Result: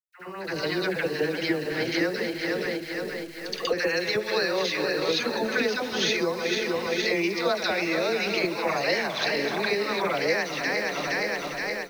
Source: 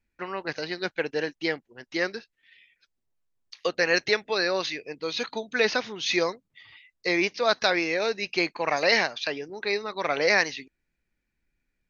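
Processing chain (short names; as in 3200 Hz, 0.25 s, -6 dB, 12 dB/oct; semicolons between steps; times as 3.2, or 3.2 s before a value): regenerating reverse delay 0.234 s, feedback 73%, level -10.5 dB; low shelf 260 Hz +6.5 dB; compressor 10:1, threshold -34 dBFS, peak gain reduction 18.5 dB; bit-crush 10-bit; gate with hold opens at -44 dBFS; dispersion lows, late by 83 ms, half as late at 680 Hz; AGC gain up to 16 dB; on a send: reverse echo 71 ms -9 dB; on the sum: gain -4.5 dB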